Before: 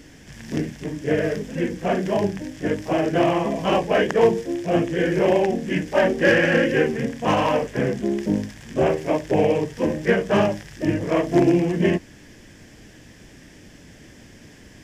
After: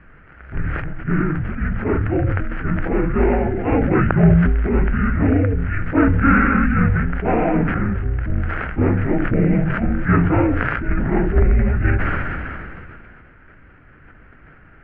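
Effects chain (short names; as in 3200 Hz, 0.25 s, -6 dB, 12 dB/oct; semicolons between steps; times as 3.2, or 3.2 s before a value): mistuned SSB -290 Hz 220–2400 Hz; sustainer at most 23 dB/s; gain +2.5 dB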